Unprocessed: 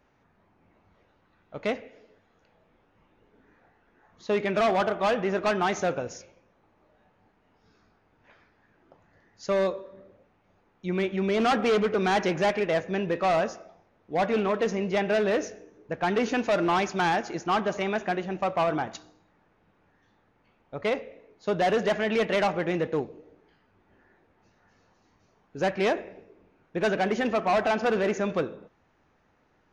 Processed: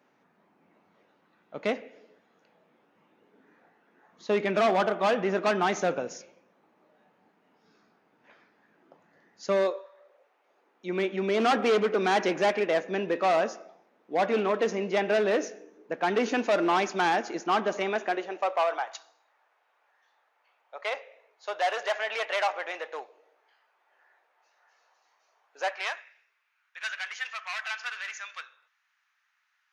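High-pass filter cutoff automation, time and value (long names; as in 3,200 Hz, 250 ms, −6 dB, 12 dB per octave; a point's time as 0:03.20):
high-pass filter 24 dB per octave
0:09.54 170 Hz
0:09.89 720 Hz
0:10.97 220 Hz
0:17.80 220 Hz
0:18.87 640 Hz
0:25.67 640 Hz
0:26.10 1,400 Hz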